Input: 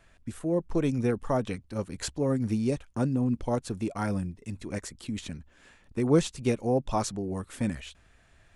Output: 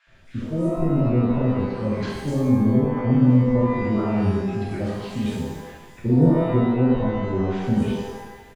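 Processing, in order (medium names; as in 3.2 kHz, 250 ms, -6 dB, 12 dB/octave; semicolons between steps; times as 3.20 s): low-pass that closes with the level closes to 310 Hz, closed at -24.5 dBFS; three bands offset in time mids, lows, highs 70/250 ms, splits 990/5700 Hz; pitch-shifted reverb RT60 1.1 s, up +12 st, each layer -8 dB, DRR -7.5 dB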